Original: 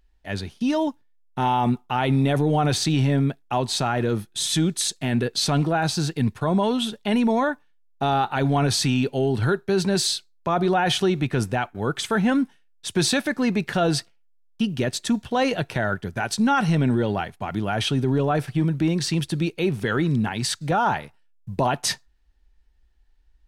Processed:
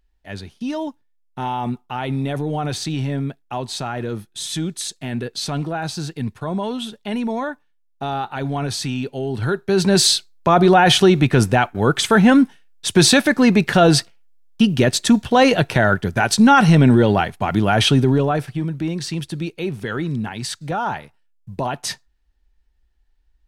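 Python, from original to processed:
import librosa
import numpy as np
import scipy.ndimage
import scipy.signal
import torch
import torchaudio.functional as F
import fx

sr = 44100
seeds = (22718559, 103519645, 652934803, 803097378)

y = fx.gain(x, sr, db=fx.line((9.24, -3.0), (10.04, 8.5), (17.93, 8.5), (18.61, -2.0)))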